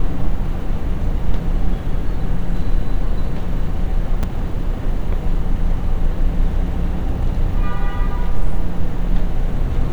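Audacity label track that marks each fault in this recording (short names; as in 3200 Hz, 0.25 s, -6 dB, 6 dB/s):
4.230000	4.240000	gap 5.6 ms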